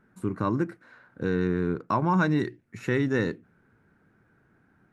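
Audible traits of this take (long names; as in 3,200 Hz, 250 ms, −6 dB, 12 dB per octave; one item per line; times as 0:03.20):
background noise floor −65 dBFS
spectral slope −4.5 dB per octave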